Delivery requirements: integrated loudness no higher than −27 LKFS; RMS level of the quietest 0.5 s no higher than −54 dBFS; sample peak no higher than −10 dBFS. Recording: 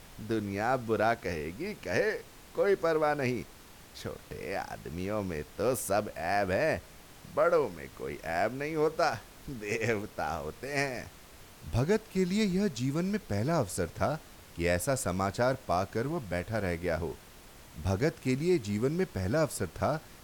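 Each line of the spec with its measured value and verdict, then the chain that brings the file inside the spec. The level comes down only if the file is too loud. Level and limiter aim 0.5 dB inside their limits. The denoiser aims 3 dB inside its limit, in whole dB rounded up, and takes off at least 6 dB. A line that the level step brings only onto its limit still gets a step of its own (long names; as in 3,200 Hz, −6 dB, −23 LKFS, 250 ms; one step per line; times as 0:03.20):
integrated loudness −31.5 LKFS: in spec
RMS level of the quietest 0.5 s −52 dBFS: out of spec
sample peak −13.5 dBFS: in spec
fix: broadband denoise 6 dB, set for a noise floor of −52 dBFS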